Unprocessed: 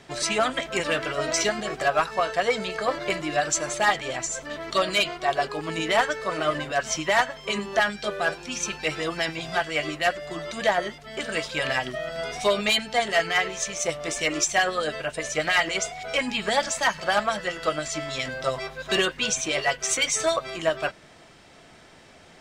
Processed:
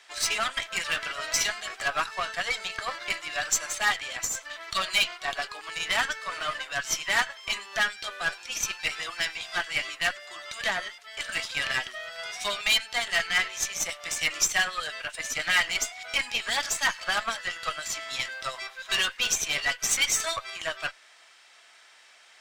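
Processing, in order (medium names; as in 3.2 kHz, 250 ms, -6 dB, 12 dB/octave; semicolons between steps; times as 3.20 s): high-pass 1.3 kHz 12 dB/octave; Chebyshev shaper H 8 -23 dB, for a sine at -10.5 dBFS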